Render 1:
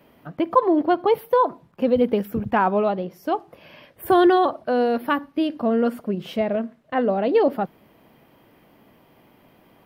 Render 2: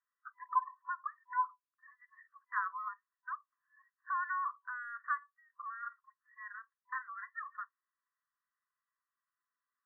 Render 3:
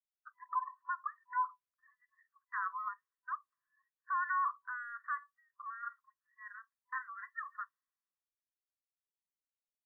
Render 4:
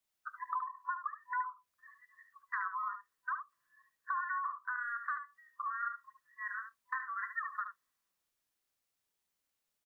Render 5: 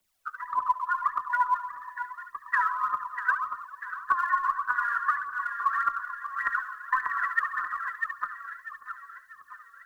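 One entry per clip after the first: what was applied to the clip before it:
spectral noise reduction 25 dB; FFT band-pass 1000–2000 Hz; compressor 1.5:1, threshold -40 dBFS, peak gain reduction 10 dB; gain -3 dB
limiter -30 dBFS, peak gain reduction 9.5 dB; three-band expander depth 70%; gain +1 dB
compressor 6:1, threshold -45 dBFS, peak gain reduction 15 dB; on a send: echo 73 ms -8.5 dB; on the sum: gain +10 dB
split-band echo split 1200 Hz, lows 0.134 s, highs 0.644 s, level -4.5 dB; phaser 1.7 Hz, delay 2.4 ms, feedback 64%; frequency shift -16 Hz; gain +7.5 dB

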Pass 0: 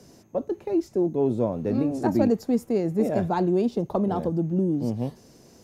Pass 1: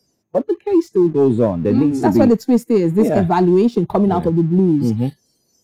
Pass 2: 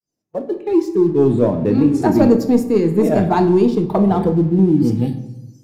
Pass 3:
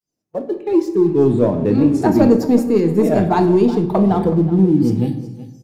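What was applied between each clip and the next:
spectral noise reduction 21 dB; sample leveller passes 1; gain +6.5 dB
opening faded in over 0.72 s; shoebox room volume 260 m³, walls mixed, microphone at 0.5 m; gain -1 dB
echo 0.373 s -16 dB

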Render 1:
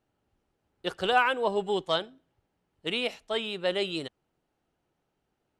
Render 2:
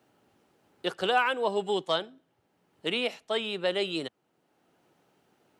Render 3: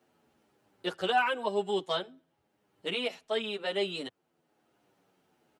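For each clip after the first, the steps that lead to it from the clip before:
HPF 150 Hz 12 dB/oct; three-band squash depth 40%
endless flanger 8.7 ms -0.95 Hz

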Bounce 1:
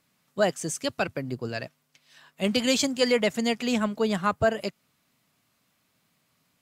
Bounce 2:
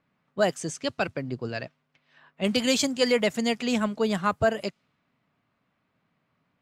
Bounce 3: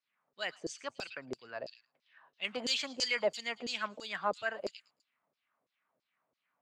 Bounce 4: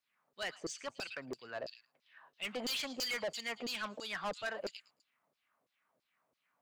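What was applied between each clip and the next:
low-pass opened by the level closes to 2000 Hz, open at -21 dBFS
delay with a stepping band-pass 0.11 s, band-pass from 4200 Hz, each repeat 0.7 oct, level -5 dB; LFO band-pass saw down 3 Hz 420–6200 Hz
soft clip -35.5 dBFS, distortion -6 dB; gain +2 dB

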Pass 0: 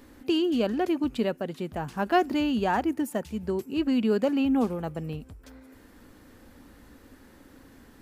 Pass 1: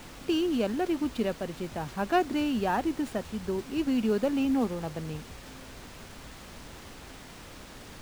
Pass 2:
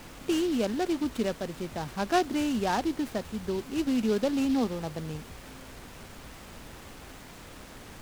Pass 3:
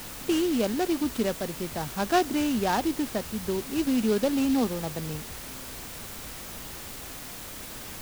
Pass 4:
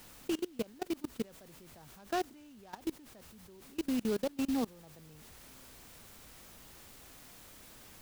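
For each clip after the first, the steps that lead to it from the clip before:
added noise pink -43 dBFS; running maximum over 3 samples; gain -2.5 dB
noise-modulated delay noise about 3600 Hz, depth 0.039 ms
added noise white -44 dBFS; gain +2 dB
level quantiser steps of 24 dB; gain -6.5 dB

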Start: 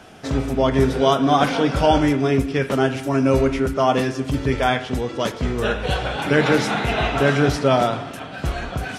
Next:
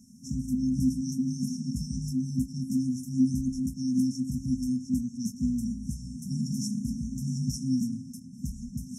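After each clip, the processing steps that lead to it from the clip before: FFT band-reject 260–5300 Hz; three-band isolator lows -21 dB, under 270 Hz, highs -12 dB, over 3100 Hz; gain +8 dB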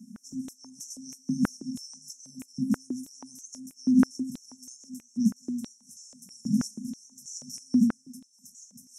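stepped high-pass 6.2 Hz 210–6400 Hz; gain -2 dB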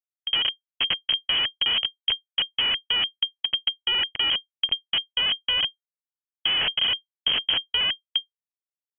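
Schmitt trigger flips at -35 dBFS; inverted band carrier 3200 Hz; gain +8.5 dB

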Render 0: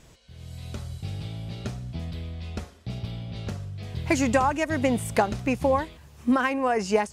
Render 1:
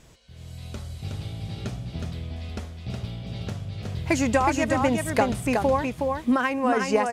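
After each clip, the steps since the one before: echo 0.367 s -4 dB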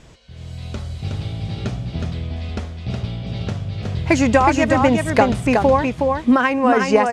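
air absorption 62 m; gain +7.5 dB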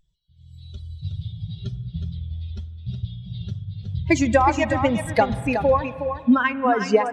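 per-bin expansion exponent 2; spring tank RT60 3.1 s, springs 44/49 ms, chirp 45 ms, DRR 15.5 dB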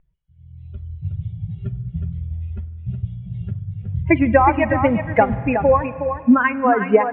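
steep low-pass 2500 Hz 48 dB/oct; gain +3.5 dB

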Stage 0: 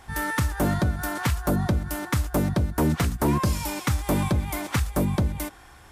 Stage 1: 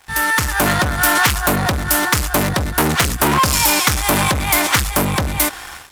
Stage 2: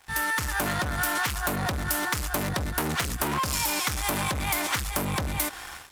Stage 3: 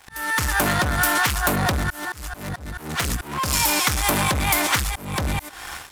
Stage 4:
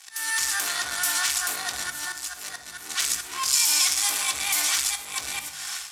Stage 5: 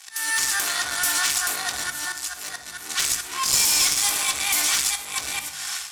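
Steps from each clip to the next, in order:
AGC gain up to 9.5 dB; sample leveller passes 3; tilt shelf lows -6.5 dB, about 630 Hz; gain -4.5 dB
compressor, threshold -17 dBFS, peak gain reduction 7.5 dB; gain -7 dB
auto swell 0.335 s; gain +7 dB
limiter -16 dBFS, peak gain reduction 9.5 dB; band-pass 6600 Hz, Q 1; reverb RT60 0.85 s, pre-delay 3 ms, DRR 3.5 dB; gain +7.5 dB
one-sided clip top -20.5 dBFS; gain +3 dB

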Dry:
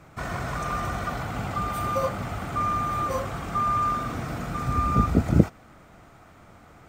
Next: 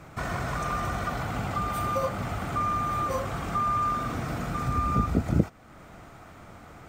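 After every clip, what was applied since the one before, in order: compressor 1.5:1, threshold -37 dBFS, peak gain reduction 10 dB; gain +3.5 dB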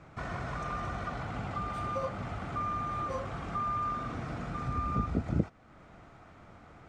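air absorption 91 m; gain -6 dB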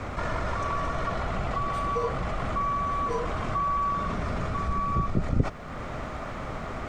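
in parallel at +2 dB: negative-ratio compressor -47 dBFS, ratio -1; on the sum: frequency shift -63 Hz; gain +5 dB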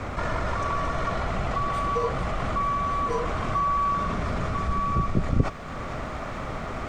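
thin delay 0.444 s, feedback 73%, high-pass 2000 Hz, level -9 dB; gain +2 dB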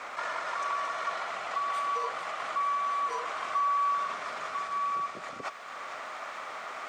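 HPF 870 Hz 12 dB/oct; gain -1.5 dB

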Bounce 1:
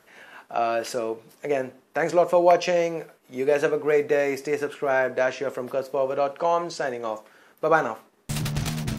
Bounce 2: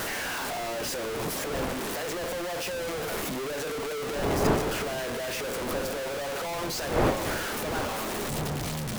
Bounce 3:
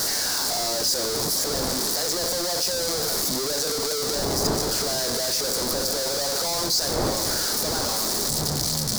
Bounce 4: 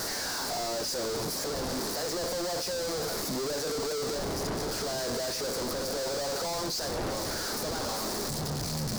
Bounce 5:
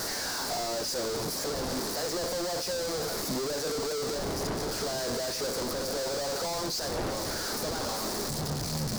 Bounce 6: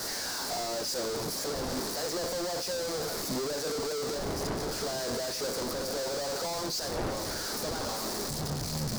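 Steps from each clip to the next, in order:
infinite clipping; wind noise 630 Hz -27 dBFS; gain -7.5 dB
resonant high shelf 3600 Hz +9.5 dB, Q 3; in parallel at -0.5 dB: negative-ratio compressor -29 dBFS; on the sum: gain -3 dB
high shelf 3700 Hz -8.5 dB; overloaded stage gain 27.5 dB; gain -2.5 dB
transient shaper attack +10 dB, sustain -2 dB
three-band expander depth 40%; gain -1 dB

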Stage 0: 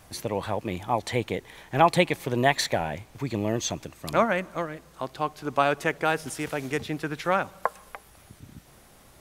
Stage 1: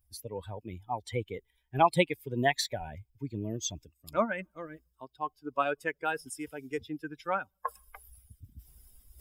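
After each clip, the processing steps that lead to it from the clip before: per-bin expansion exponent 2; reverse; upward compressor, threshold -33 dBFS; reverse; gain -2 dB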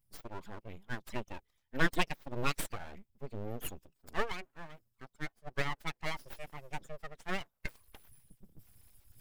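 full-wave rectifier; gain -3 dB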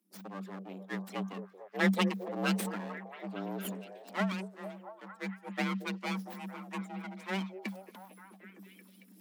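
delay with a stepping band-pass 0.227 s, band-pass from 230 Hz, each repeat 0.7 oct, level -3 dB; frequency shift +190 Hz

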